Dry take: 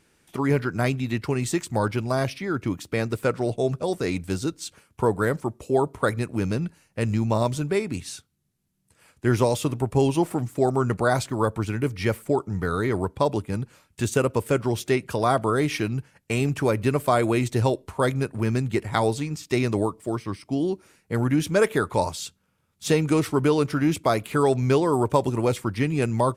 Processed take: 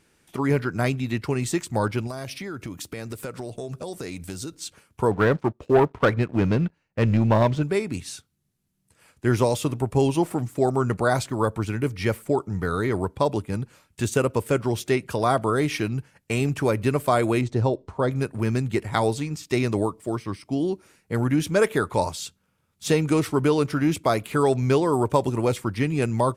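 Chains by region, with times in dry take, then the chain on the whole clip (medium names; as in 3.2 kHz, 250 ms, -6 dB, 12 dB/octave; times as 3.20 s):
2.07–4.55 s: treble shelf 4.9 kHz +8 dB + compression 10:1, threshold -29 dBFS
5.11–7.63 s: low-pass 3.3 kHz + waveshaping leveller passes 2 + upward expansion, over -27 dBFS
17.41–18.12 s: low-pass 4.4 kHz + peaking EQ 2.5 kHz -8.5 dB 1.6 oct
whole clip: none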